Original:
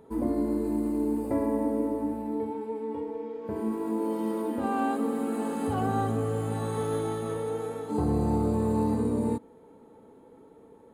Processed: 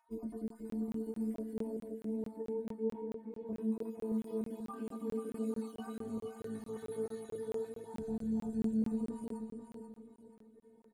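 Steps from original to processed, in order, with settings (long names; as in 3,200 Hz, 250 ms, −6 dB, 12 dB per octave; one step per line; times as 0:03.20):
time-frequency cells dropped at random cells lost 39%
0:02.54–0:03.32: bass and treble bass +8 dB, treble −14 dB
0:07.37–0:08.81: comb filter 1.2 ms, depth 49%
brickwall limiter −23.5 dBFS, peak gain reduction 7.5 dB
stiff-string resonator 220 Hz, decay 0.23 s, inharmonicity 0.008
auto-filter notch saw up 3.4 Hz 380–3,100 Hz
repeating echo 485 ms, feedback 36%, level −7.5 dB
on a send at −17 dB: convolution reverb RT60 1.3 s, pre-delay 26 ms
on the sum: regular buffer underruns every 0.22 s, samples 1,024, zero, from 0:00.48
level +2 dB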